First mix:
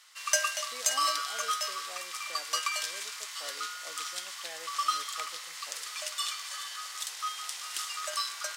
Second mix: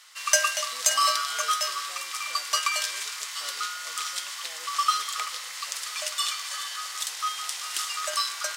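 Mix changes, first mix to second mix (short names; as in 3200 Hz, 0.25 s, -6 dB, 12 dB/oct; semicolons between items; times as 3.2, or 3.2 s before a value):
speech -4.0 dB; background +5.5 dB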